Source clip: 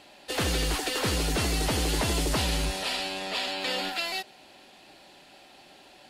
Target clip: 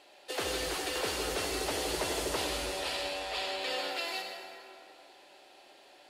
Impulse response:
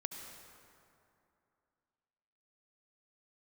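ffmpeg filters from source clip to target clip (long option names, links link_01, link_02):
-filter_complex "[0:a]lowshelf=frequency=280:width_type=q:width=1.5:gain=-11[link_01];[1:a]atrim=start_sample=2205[link_02];[link_01][link_02]afir=irnorm=-1:irlink=0,volume=-3.5dB"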